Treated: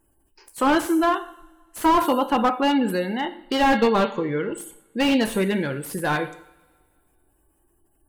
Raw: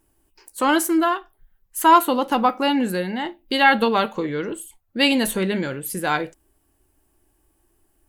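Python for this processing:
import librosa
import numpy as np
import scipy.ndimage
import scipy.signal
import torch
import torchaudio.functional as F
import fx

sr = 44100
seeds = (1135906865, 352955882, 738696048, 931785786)

y = fx.spec_gate(x, sr, threshold_db=-30, keep='strong')
y = fx.rev_double_slope(y, sr, seeds[0], early_s=0.61, late_s=2.0, knee_db=-21, drr_db=9.0)
y = fx.slew_limit(y, sr, full_power_hz=160.0)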